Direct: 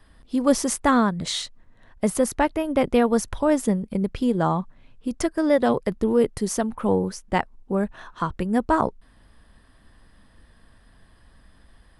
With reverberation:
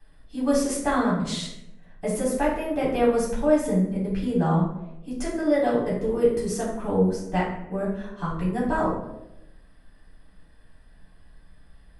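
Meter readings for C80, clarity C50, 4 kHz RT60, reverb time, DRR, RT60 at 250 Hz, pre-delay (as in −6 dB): 6.5 dB, 3.0 dB, 0.50 s, 0.95 s, −8.0 dB, 1.1 s, 3 ms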